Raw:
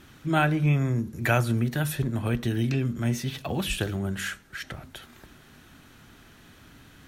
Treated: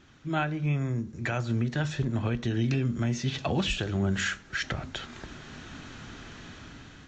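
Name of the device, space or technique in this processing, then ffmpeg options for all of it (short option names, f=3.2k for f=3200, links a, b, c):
low-bitrate web radio: -af "dynaudnorm=f=640:g=5:m=16dB,alimiter=limit=-12.5dB:level=0:latency=1:release=295,volume=-5.5dB" -ar 16000 -c:a aac -b:a 48k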